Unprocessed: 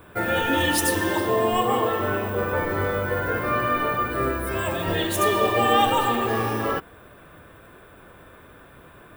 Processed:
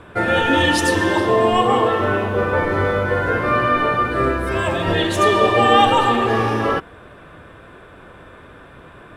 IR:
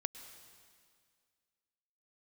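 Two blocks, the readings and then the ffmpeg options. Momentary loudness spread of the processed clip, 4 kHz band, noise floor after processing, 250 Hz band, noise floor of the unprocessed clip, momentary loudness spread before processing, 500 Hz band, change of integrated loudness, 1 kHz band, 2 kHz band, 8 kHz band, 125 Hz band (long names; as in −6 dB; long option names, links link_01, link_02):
6 LU, +5.5 dB, −43 dBFS, +6.0 dB, −49 dBFS, 6 LU, +6.0 dB, +5.5 dB, +6.0 dB, +6.0 dB, −1.0 dB, +6.0 dB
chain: -af "lowpass=6100,volume=6dB"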